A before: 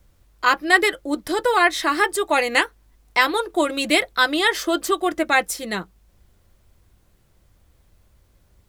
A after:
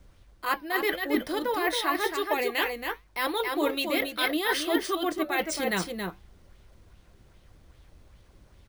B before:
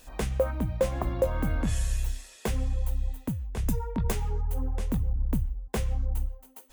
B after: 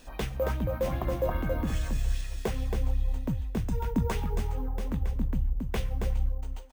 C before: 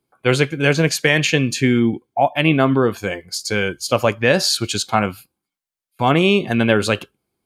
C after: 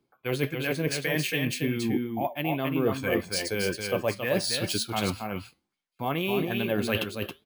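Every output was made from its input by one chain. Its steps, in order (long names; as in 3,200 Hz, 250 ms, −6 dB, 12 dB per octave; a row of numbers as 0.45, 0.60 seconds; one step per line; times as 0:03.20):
dynamic equaliser 1,400 Hz, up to −6 dB, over −36 dBFS, Q 5.6
reversed playback
downward compressor 16 to 1, threshold −27 dBFS
reversed playback
flanger 1.8 Hz, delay 4.9 ms, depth 2.9 ms, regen −86%
on a send: single-tap delay 274 ms −5 dB
on the sum: bad sample-rate conversion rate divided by 3×, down filtered, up hold
auto-filter bell 2.5 Hz 230–3,600 Hz +6 dB
level +6 dB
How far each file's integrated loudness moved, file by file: −8.0, −1.0, −10.5 LU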